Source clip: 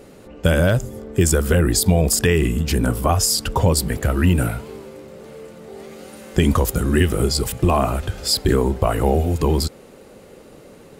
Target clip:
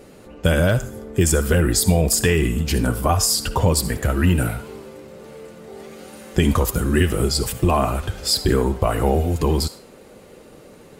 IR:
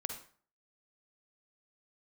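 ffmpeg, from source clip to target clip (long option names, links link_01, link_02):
-filter_complex "[0:a]asplit=2[link_01][link_02];[link_02]highpass=900[link_03];[1:a]atrim=start_sample=2205,adelay=7[link_04];[link_03][link_04]afir=irnorm=-1:irlink=0,volume=-5.5dB[link_05];[link_01][link_05]amix=inputs=2:normalize=0,volume=-1dB"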